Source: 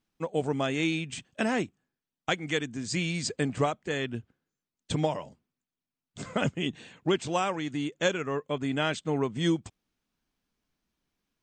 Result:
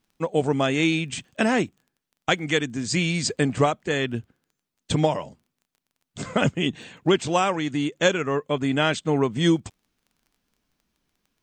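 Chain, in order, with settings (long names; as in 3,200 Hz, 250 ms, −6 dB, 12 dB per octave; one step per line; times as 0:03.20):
surface crackle 18 per second −53 dBFS
level +6.5 dB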